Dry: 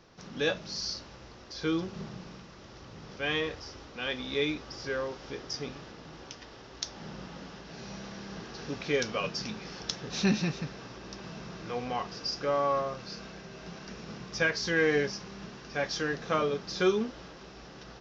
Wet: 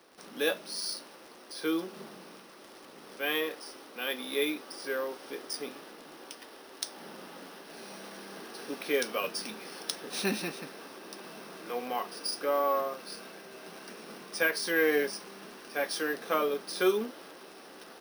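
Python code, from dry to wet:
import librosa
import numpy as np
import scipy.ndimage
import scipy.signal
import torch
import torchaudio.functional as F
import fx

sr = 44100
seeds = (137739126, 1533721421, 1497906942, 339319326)

y = scipy.signal.sosfilt(scipy.signal.butter(4, 250.0, 'highpass', fs=sr, output='sos'), x)
y = fx.dmg_crackle(y, sr, seeds[0], per_s=99.0, level_db=-44.0)
y = np.repeat(y[::3], 3)[:len(y)]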